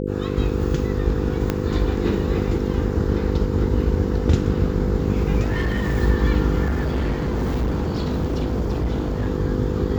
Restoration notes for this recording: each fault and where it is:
mains buzz 50 Hz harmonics 10 −25 dBFS
0:01.50: click −8 dBFS
0:05.41–0:05.97: clipping −17 dBFS
0:06.65–0:09.28: clipping −18.5 dBFS

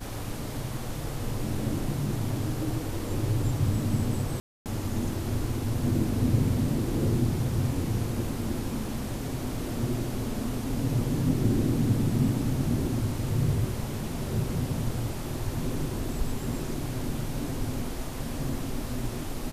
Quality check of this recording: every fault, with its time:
0:04.40–0:04.66: drop-out 258 ms

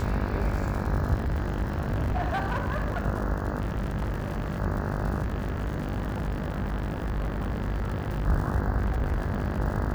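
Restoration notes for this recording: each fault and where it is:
mains buzz 50 Hz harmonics 34 −31 dBFS
surface crackle 110 per second −34 dBFS
0:01.14–0:03.06: clipping −23.5 dBFS
0:03.60–0:04.59: clipping −25.5 dBFS
0:05.22–0:08.27: clipping −25.5 dBFS
0:08.77–0:09.61: clipping −22.5 dBFS

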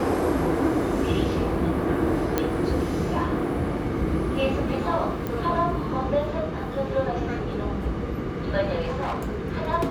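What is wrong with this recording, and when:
0:02.38: click −8 dBFS
0:05.27: click −16 dBFS
0:08.80–0:09.42: clipping −24 dBFS

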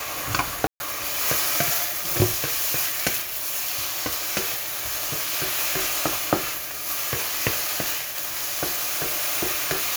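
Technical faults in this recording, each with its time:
0:00.67–0:00.80: drop-out 131 ms
0:08.76–0:09.24: clipping −21.5 dBFS

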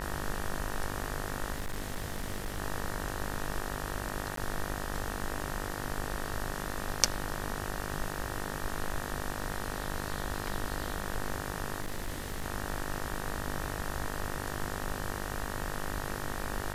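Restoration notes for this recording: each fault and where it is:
mains buzz 50 Hz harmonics 38 −39 dBFS
0:01.52–0:02.59: clipping −30.5 dBFS
0:04.36–0:04.37: drop-out 13 ms
0:11.81–0:12.46: clipping −31 dBFS

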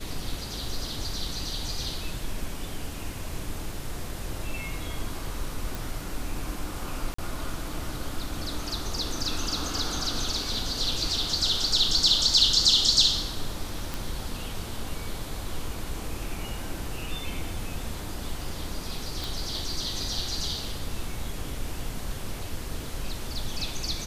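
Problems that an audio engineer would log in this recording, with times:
0:05.75: click
0:07.14–0:07.18: drop-out 44 ms
0:13.94: click
0:19.24: click

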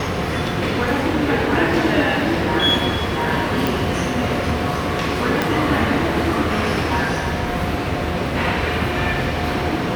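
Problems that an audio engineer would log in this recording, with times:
0:03.67: click
0:05.42: click −4 dBFS

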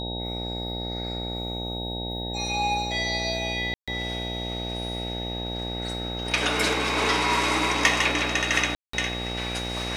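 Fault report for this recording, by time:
mains buzz 60 Hz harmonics 15 −33 dBFS
whistle 3,800 Hz −33 dBFS
0:03.74–0:03.88: drop-out 136 ms
0:08.75–0:08.93: drop-out 184 ms

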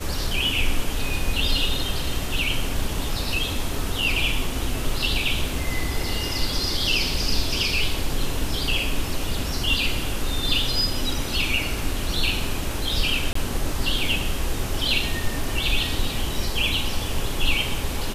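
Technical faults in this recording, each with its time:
0:13.33–0:13.35: drop-out 24 ms

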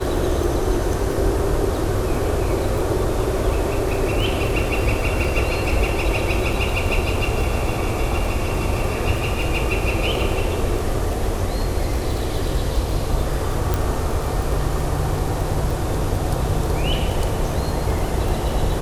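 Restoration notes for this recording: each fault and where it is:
surface crackle 15 per second −23 dBFS
0:13.74: click

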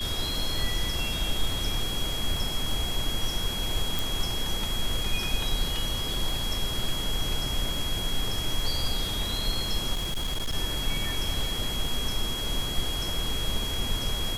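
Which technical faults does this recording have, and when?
surface crackle 54 per second −34 dBFS
whistle 3,300 Hz −32 dBFS
0:03.99: click
0:09.93–0:10.55: clipping −25 dBFS

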